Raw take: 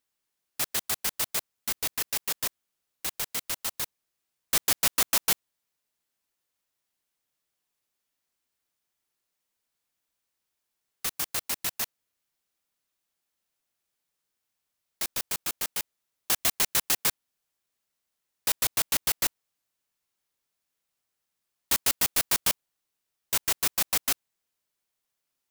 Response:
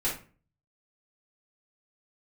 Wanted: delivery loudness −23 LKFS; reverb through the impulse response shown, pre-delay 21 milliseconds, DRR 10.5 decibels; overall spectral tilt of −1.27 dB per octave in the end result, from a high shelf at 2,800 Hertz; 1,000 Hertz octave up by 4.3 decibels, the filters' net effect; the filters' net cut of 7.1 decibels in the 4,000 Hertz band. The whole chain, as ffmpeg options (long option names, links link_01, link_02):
-filter_complex "[0:a]equalizer=frequency=1000:width_type=o:gain=6.5,highshelf=frequency=2800:gain=-6,equalizer=frequency=4000:width_type=o:gain=-4.5,asplit=2[link_01][link_02];[1:a]atrim=start_sample=2205,adelay=21[link_03];[link_02][link_03]afir=irnorm=-1:irlink=0,volume=-18dB[link_04];[link_01][link_04]amix=inputs=2:normalize=0,volume=9dB"